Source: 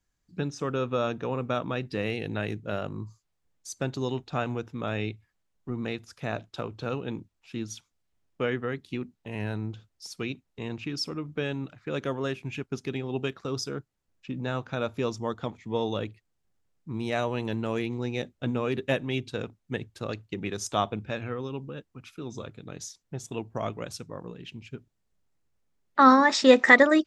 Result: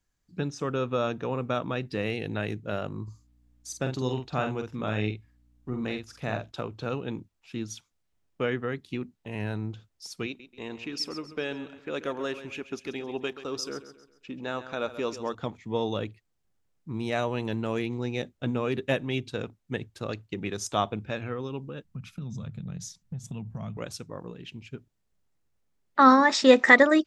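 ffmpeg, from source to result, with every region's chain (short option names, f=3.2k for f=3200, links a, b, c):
-filter_complex "[0:a]asettb=1/sr,asplit=3[a][b][c];[a]atrim=end=3.034[d];[b]atrim=start=3.03:end=6.52,asetpts=PTS-STARTPTS,afade=t=in:d=0.004:c=qsin,afade=t=out:st=3.486:d=0.004:c=qsin,aeval=exprs='val(0)+0.000708*(sin(2*PI*60*n/s)+sin(2*PI*2*60*n/s)/2+sin(2*PI*3*60*n/s)/3+sin(2*PI*4*60*n/s)/4+sin(2*PI*5*60*n/s)/5)':c=same,asplit=2[e][f];[f]adelay=47,volume=-6dB[g];[e][g]amix=inputs=2:normalize=0,atrim=end_sample=153909[h];[c]atrim=start=6.516[i];[d][h]acrossfade=d=0.004:c1=hsin:c2=qsin[j];[j][i]acrossfade=d=0.004:c1=qsin:c2=hsin,asettb=1/sr,asplit=3[k][l][m];[k]atrim=end=10.264[n];[l]atrim=start=10.26:end=15.35,asetpts=PTS-STARTPTS,afade=t=in:d=0.004:c=qsin,afade=t=out:st=5.086:d=0.004:c=qsin,equalizer=f=130:t=o:w=1.1:g=-13.5,aecho=1:1:134|268|402|536:0.224|0.0895|0.0358|0.0143,atrim=end_sample=224469[o];[m]atrim=start=15.346[p];[n][o]acrossfade=d=0.004:c1=hsin:c2=qsin[q];[q][p]acrossfade=d=0.004:c1=qsin:c2=hsin,asettb=1/sr,asplit=3[r][s][t];[r]atrim=end=21.844[u];[s]atrim=start=21.84:end=23.77,asetpts=PTS-STARTPTS,afade=t=in:d=0.004:c=qsin,afade=t=out:st=1.926:d=0.004:c=qsin,lowshelf=f=250:t=q:w=3:g=10.5,acompressor=threshold=-33dB:ratio=6:attack=3.2:release=140:knee=1:detection=peak[v];[t]atrim=start=23.766[w];[u][v]acrossfade=d=0.004:c1=hsin:c2=qsin[x];[x][w]acrossfade=d=0.004:c1=qsin:c2=hsin"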